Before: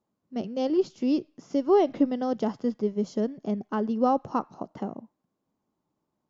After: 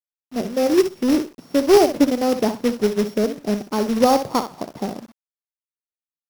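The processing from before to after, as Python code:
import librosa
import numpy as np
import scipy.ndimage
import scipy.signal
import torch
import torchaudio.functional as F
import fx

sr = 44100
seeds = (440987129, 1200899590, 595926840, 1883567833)

y = np.r_[np.sort(x[:len(x) // 8 * 8].reshape(-1, 8), axis=1).ravel(), x[len(x) // 8 * 8:]]
y = fx.echo_thinned(y, sr, ms=63, feedback_pct=18, hz=190.0, wet_db=-9)
y = fx.dynamic_eq(y, sr, hz=530.0, q=1.1, threshold_db=-37.0, ratio=4.0, max_db=4)
y = fx.quant_companded(y, sr, bits=4)
y = fx.high_shelf(y, sr, hz=3600.0, db=-6.5)
y = y * 10.0 ** (5.0 / 20.0)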